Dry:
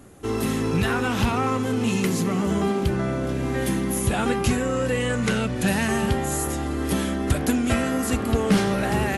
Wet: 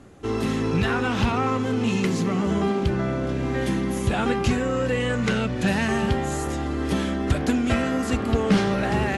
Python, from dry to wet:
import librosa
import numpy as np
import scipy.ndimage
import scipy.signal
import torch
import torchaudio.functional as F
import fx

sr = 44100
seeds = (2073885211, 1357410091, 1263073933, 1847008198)

y = scipy.signal.sosfilt(scipy.signal.butter(2, 5900.0, 'lowpass', fs=sr, output='sos'), x)